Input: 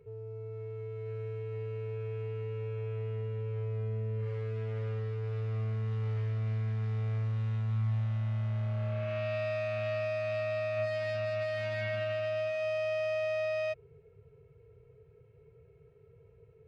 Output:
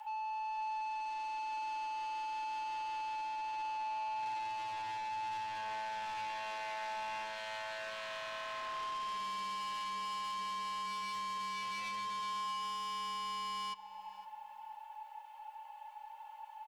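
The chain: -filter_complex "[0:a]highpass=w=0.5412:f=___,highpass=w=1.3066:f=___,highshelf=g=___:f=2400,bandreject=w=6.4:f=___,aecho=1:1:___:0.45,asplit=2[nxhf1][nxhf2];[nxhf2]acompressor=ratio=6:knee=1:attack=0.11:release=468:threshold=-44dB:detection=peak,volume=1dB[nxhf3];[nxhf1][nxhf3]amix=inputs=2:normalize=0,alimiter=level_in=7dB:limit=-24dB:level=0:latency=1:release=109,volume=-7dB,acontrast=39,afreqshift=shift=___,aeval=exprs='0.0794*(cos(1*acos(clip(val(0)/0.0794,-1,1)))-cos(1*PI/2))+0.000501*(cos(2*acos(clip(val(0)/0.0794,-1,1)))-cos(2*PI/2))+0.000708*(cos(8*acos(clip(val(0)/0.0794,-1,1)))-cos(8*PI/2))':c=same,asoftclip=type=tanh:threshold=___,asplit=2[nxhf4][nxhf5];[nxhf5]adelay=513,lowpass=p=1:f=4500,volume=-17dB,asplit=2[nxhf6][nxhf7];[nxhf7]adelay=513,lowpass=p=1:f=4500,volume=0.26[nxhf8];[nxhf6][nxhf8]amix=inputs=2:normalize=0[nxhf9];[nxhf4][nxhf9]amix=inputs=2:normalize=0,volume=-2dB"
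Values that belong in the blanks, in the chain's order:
270, 270, 7.5, 760, 4.8, 430, -35dB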